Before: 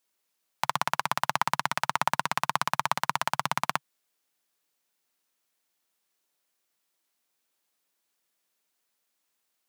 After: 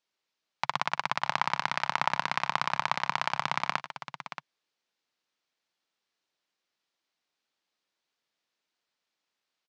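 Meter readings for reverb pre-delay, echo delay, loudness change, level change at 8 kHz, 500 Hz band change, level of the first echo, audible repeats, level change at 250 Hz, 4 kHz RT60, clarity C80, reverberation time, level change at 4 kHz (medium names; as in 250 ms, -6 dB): no reverb, 102 ms, -1.5 dB, -9.0 dB, -2.0 dB, -19.0 dB, 2, -2.0 dB, no reverb, no reverb, no reverb, -0.5 dB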